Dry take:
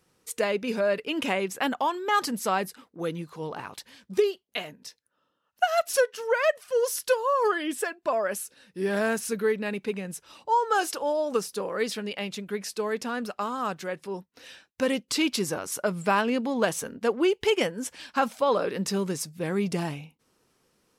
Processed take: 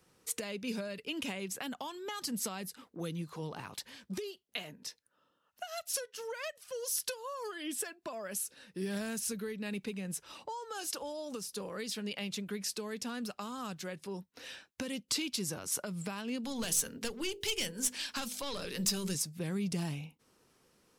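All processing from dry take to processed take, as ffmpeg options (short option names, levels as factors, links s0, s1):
-filter_complex "[0:a]asettb=1/sr,asplit=3[s0][s1][s2];[s0]atrim=end=16.444[s3];[s1]atrim=start=16.44:end=19.15,asetpts=PTS-STARTPTS,afade=t=in:d=0.004:c=qsin,afade=t=out:st=2.706:d=0.004:c=qsin,highshelf=f=2000:g=10.5,bandreject=f=50:t=h:w=6,bandreject=f=100:t=h:w=6,bandreject=f=150:t=h:w=6,bandreject=f=200:t=h:w=6,bandreject=f=250:t=h:w=6,bandreject=f=300:t=h:w=6,bandreject=f=350:t=h:w=6,bandreject=f=400:t=h:w=6,bandreject=f=450:t=h:w=6,bandreject=f=500:t=h:w=6,aeval=exprs='(tanh(7.94*val(0)+0.25)-tanh(0.25))/7.94':c=same[s4];[s2]atrim=start=19.146[s5];[s3][s4]acrossfade=d=0.004:c1=hsin:c2=qsin[s6];[s6][s5]acrossfade=d=0.004:c1=qsin:c2=hsin,alimiter=limit=0.1:level=0:latency=1:release=309,acrossover=split=210|3000[s7][s8][s9];[s8]acompressor=threshold=0.00794:ratio=5[s10];[s7][s10][s9]amix=inputs=3:normalize=0"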